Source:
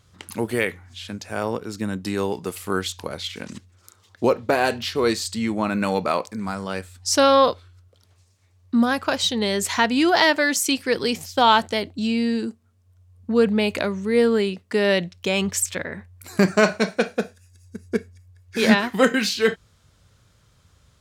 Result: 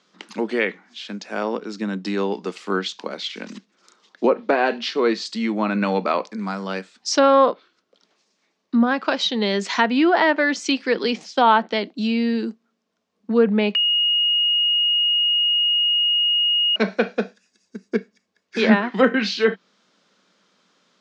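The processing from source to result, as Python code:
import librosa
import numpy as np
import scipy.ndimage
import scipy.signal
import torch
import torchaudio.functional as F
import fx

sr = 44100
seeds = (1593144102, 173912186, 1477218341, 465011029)

y = fx.edit(x, sr, fx.bleep(start_s=13.75, length_s=3.01, hz=2870.0, db=-16.5), tone=tone)
y = scipy.signal.sosfilt(scipy.signal.butter(4, 6000.0, 'lowpass', fs=sr, output='sos'), y)
y = fx.env_lowpass_down(y, sr, base_hz=1900.0, full_db=-14.0)
y = scipy.signal.sosfilt(scipy.signal.cheby1(5, 1.0, 190.0, 'highpass', fs=sr, output='sos'), y)
y = y * 10.0 ** (2.0 / 20.0)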